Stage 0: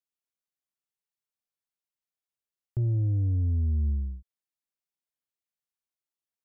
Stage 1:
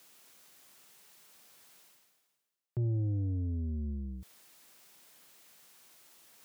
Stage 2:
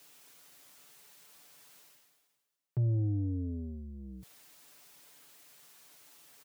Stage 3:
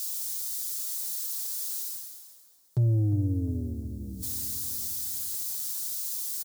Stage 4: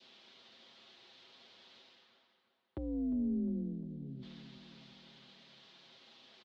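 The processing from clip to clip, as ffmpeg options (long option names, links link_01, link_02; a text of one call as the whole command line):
ffmpeg -i in.wav -af "highpass=140,areverse,acompressor=mode=upward:threshold=-34dB:ratio=2.5,areverse" out.wav
ffmpeg -i in.wav -af "aecho=1:1:6.9:0.62" out.wav
ffmpeg -i in.wav -filter_complex "[0:a]aexciter=amount=7.9:drive=4.7:freq=3800,asplit=2[link_01][link_02];[link_02]adelay=354,lowpass=frequency=2200:poles=1,volume=-12dB,asplit=2[link_03][link_04];[link_04]adelay=354,lowpass=frequency=2200:poles=1,volume=0.54,asplit=2[link_05][link_06];[link_06]adelay=354,lowpass=frequency=2200:poles=1,volume=0.54,asplit=2[link_07][link_08];[link_08]adelay=354,lowpass=frequency=2200:poles=1,volume=0.54,asplit=2[link_09][link_10];[link_10]adelay=354,lowpass=frequency=2200:poles=1,volume=0.54,asplit=2[link_11][link_12];[link_12]adelay=354,lowpass=frequency=2200:poles=1,volume=0.54[link_13];[link_01][link_03][link_05][link_07][link_09][link_11][link_13]amix=inputs=7:normalize=0,volume=5.5dB" out.wav
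ffmpeg -i in.wav -af "adynamicequalizer=threshold=0.00158:dfrequency=1400:dqfactor=0.95:tfrequency=1400:tqfactor=0.95:attack=5:release=100:ratio=0.375:range=3:mode=cutabove:tftype=bell,highpass=frequency=220:width_type=q:width=0.5412,highpass=frequency=220:width_type=q:width=1.307,lowpass=frequency=3300:width_type=q:width=0.5176,lowpass=frequency=3300:width_type=q:width=0.7071,lowpass=frequency=3300:width_type=q:width=1.932,afreqshift=-57" out.wav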